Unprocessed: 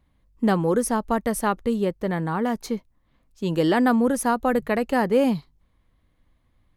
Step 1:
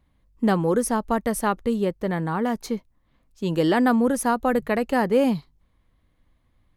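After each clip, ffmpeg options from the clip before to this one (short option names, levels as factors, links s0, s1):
-af anull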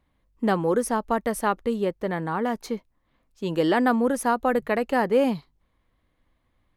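-af "bass=f=250:g=-6,treble=f=4000:g=-4"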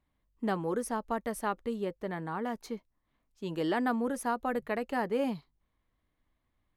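-af "bandreject=f=520:w=14,volume=0.376"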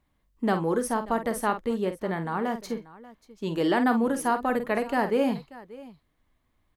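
-af "aecho=1:1:48|586:0.335|0.112,volume=2"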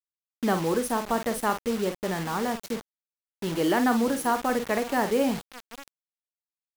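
-af "acrusher=bits=5:mix=0:aa=0.000001"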